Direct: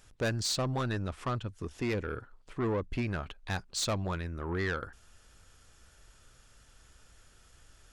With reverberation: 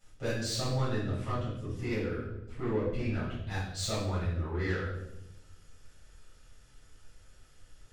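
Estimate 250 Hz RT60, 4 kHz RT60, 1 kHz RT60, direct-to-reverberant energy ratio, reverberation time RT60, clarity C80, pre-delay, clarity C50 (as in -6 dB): 1.3 s, 0.70 s, 0.70 s, -11.5 dB, 0.90 s, 5.5 dB, 5 ms, 1.5 dB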